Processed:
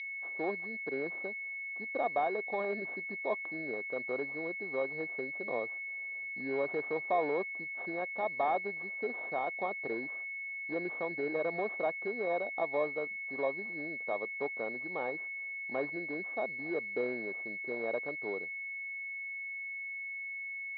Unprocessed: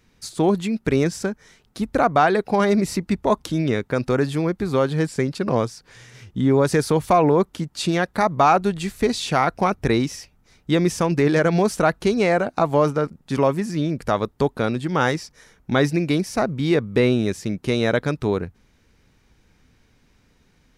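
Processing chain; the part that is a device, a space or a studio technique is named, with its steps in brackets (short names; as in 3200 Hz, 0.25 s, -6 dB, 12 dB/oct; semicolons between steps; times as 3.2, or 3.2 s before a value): toy sound module (decimation joined by straight lines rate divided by 6×; pulse-width modulation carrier 2200 Hz; speaker cabinet 580–4600 Hz, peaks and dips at 930 Hz -5 dB, 1400 Hz -9 dB, 2500 Hz -3 dB, 3800 Hz +10 dB); gain -8.5 dB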